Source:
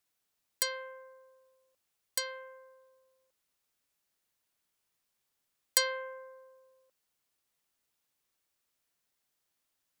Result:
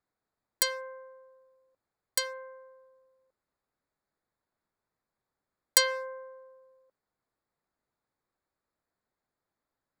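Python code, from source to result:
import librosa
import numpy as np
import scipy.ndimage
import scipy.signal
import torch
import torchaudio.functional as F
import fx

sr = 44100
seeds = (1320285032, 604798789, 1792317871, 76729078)

y = fx.wiener(x, sr, points=15)
y = F.gain(torch.from_numpy(y), 4.5).numpy()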